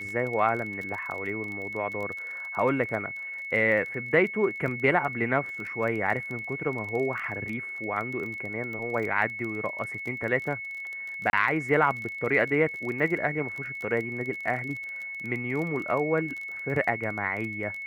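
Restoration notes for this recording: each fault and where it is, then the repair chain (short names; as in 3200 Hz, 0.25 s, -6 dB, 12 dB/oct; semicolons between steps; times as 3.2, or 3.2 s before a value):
crackle 24/s -33 dBFS
tone 2200 Hz -34 dBFS
11.3–11.33 gap 31 ms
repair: de-click; notch 2200 Hz, Q 30; interpolate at 11.3, 31 ms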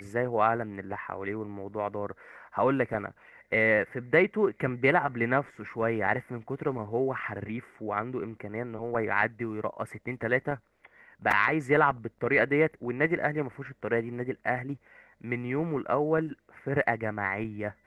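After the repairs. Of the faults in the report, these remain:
none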